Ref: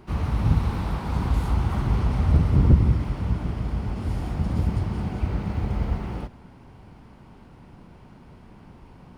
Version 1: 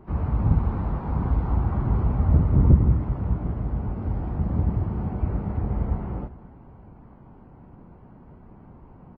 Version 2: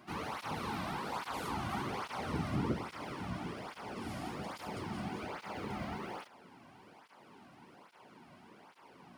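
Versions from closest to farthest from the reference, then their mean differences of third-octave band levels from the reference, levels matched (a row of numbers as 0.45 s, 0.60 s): 1, 2; 5.0 dB, 9.0 dB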